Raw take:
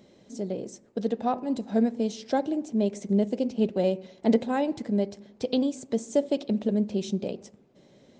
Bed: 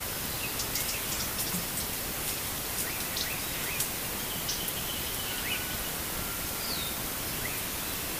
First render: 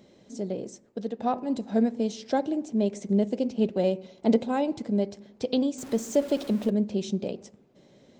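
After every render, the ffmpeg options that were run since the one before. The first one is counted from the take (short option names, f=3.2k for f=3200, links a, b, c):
-filter_complex "[0:a]asettb=1/sr,asplit=3[a][b][c];[a]atrim=end=3.984[d];[b]atrim=start=3.98:end=5.02,asetpts=PTS-STARTPTS,afade=t=in:d=0.004:c=qsin,afade=t=out:st=1.036:d=0.004:c=qsin,equalizer=f=1.8k:t=o:w=0.23:g=-8.5[e];[c]atrim=start=5.016[f];[d][e]acrossfade=d=0.004:c1=hsin:c2=qsin[g];[g][f]acrossfade=d=0.004:c1=qsin:c2=hsin,asettb=1/sr,asplit=3[h][i][j];[h]atrim=end=5.784[k];[i]atrim=start=5.78:end=6.7,asetpts=PTS-STARTPTS,afade=t=in:d=0.004:c=qsin,afade=t=out:st=0.916:d=0.004:c=qsin,aeval=exprs='val(0)+0.5*0.0126*sgn(val(0))':c=same[l];[j]atrim=start=6.696[m];[k][l]acrossfade=d=0.004:c1=hsin:c2=qsin[n];[n][m]acrossfade=d=0.004:c1=qsin:c2=hsin,asplit=2[o][p];[o]atrim=end=1.2,asetpts=PTS-STARTPTS,afade=t=out:st=0.65:d=0.55:silence=0.446684[q];[p]atrim=start=1.2,asetpts=PTS-STARTPTS,afade=t=in:d=0.004:c=hsin:silence=0.446684[r];[q][r]concat=n=2:v=0:a=1"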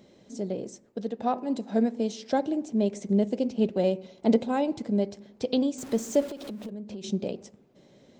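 -filter_complex "[0:a]asettb=1/sr,asplit=3[a][b][c];[a]atrim=end=1.224[d];[b]atrim=start=1.22:end=2.33,asetpts=PTS-STARTPTS,afade=t=in:d=0.004:c=qsin,afade=t=out:st=1.106:d=0.004:c=qsin,highpass=170[e];[c]atrim=start=2.326[f];[d][e]acrossfade=d=0.004:c1=hsin:c2=qsin[g];[g][f]acrossfade=d=0.004:c1=qsin:c2=hsin,asettb=1/sr,asplit=3[h][i][j];[h]atrim=end=6.264[k];[i]atrim=start=6.26:end=7.04,asetpts=PTS-STARTPTS,afade=t=in:d=0.004:c=qsin,afade=t=out:st=0.776:d=0.004:c=qsin,acompressor=threshold=-34dB:ratio=10:attack=3.2:release=140:knee=1:detection=peak[l];[j]atrim=start=7.036[m];[k][l]acrossfade=d=0.004:c1=hsin:c2=qsin[n];[n][m]acrossfade=d=0.004:c1=qsin:c2=hsin"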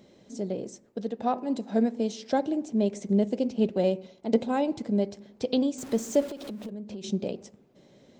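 -filter_complex "[0:a]asplit=2[a][b];[a]atrim=end=4.33,asetpts=PTS-STARTPTS,afade=t=out:st=3.91:d=0.42:c=qsin:silence=0.223872[c];[b]atrim=start=4.33,asetpts=PTS-STARTPTS,afade=t=in:d=0.004:c=hsin:silence=0.223872[d];[c][d]concat=n=2:v=0:a=1"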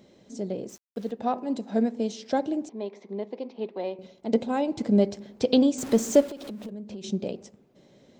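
-filter_complex "[0:a]asettb=1/sr,asplit=3[a][b][c];[a]atrim=end=0.694[d];[b]atrim=start=0.69:end=1.11,asetpts=PTS-STARTPTS,afade=t=in:d=0.004:c=qsin,afade=t=out:st=0.416:d=0.004:c=qsin,aeval=exprs='val(0)*gte(abs(val(0)),0.00398)':c=same[e];[c]atrim=start=1.106[f];[d][e]acrossfade=d=0.004:c1=hsin:c2=qsin[g];[g][f]acrossfade=d=0.004:c1=qsin:c2=hsin,asettb=1/sr,asplit=3[h][i][j];[h]atrim=end=2.694[k];[i]atrim=start=2.69:end=3.99,asetpts=PTS-STARTPTS,afade=t=in:d=0.004:c=qsin,afade=t=out:st=1.296:d=0.004:c=qsin,highpass=470,equalizer=f=590:t=q:w=4:g=-7,equalizer=f=1k:t=q:w=4:g=6,equalizer=f=1.5k:t=q:w=4:g=-7,equalizer=f=2.9k:t=q:w=4:g=-8,lowpass=f=3.8k:w=0.5412,lowpass=f=3.8k:w=1.3066[l];[j]atrim=start=3.986[m];[k][l]acrossfade=d=0.004:c1=hsin:c2=qsin[n];[n][m]acrossfade=d=0.004:c1=qsin:c2=hsin,asplit=3[o][p][q];[o]afade=t=out:st=4.77:d=0.02[r];[p]acontrast=37,afade=t=in:st=4.77:d=0.02,afade=t=out:st=6.2:d=0.02[s];[q]afade=t=in:st=6.2:d=0.02[t];[r][s][t]amix=inputs=3:normalize=0"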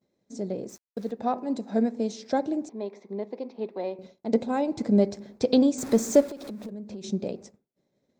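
-af "agate=range=-33dB:threshold=-44dB:ratio=3:detection=peak,equalizer=f=3k:w=5:g=-10"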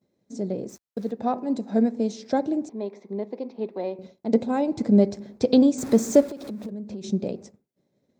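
-af "highpass=48,lowshelf=f=390:g=5"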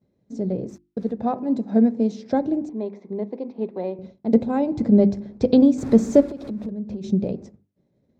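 -af "aemphasis=mode=reproduction:type=bsi,bandreject=f=50:t=h:w=6,bandreject=f=100:t=h:w=6,bandreject=f=150:t=h:w=6,bandreject=f=200:t=h:w=6,bandreject=f=250:t=h:w=6,bandreject=f=300:t=h:w=6,bandreject=f=350:t=h:w=6"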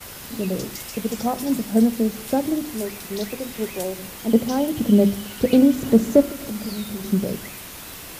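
-filter_complex "[1:a]volume=-3.5dB[a];[0:a][a]amix=inputs=2:normalize=0"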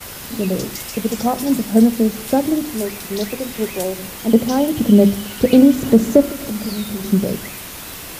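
-af "volume=5dB,alimiter=limit=-1dB:level=0:latency=1"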